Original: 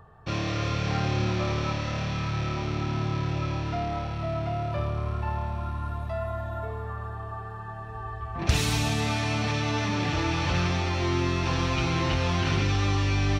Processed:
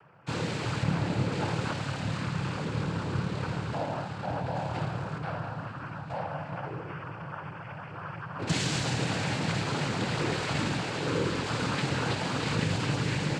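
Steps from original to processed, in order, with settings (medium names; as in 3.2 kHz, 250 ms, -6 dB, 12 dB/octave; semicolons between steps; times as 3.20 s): 0.83–1.32 s: one-bit delta coder 32 kbps, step -41.5 dBFS; 4.55–5.18 s: treble shelf 3.5 kHz +8.5 dB; noise-vocoded speech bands 8; trim -2 dB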